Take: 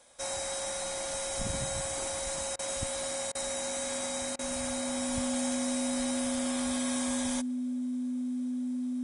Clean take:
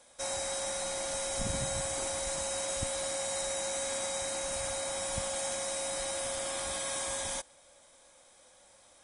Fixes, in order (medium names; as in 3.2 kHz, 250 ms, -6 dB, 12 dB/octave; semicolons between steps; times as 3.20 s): band-stop 250 Hz, Q 30; interpolate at 2.56/3.32/4.36 s, 29 ms